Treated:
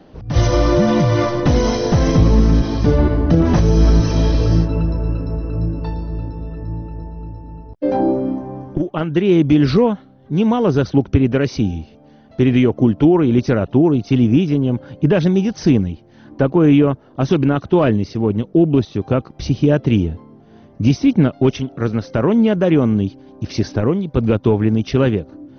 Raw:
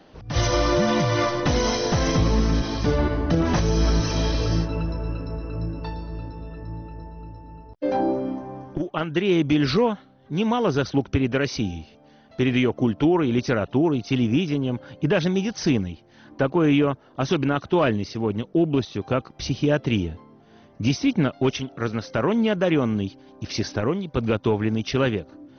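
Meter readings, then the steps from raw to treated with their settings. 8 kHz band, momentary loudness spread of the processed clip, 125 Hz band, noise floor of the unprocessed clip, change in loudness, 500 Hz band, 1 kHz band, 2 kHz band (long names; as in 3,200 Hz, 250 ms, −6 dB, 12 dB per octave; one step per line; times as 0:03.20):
can't be measured, 12 LU, +8.5 dB, −53 dBFS, +7.0 dB, +6.0 dB, +2.5 dB, +0.5 dB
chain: tilt shelving filter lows +5 dB, about 690 Hz
level +4 dB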